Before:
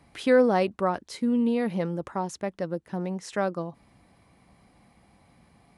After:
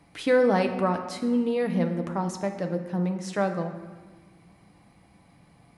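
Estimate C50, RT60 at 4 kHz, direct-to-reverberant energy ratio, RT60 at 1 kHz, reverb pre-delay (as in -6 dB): 8.5 dB, 1.0 s, 5.0 dB, 1.4 s, 6 ms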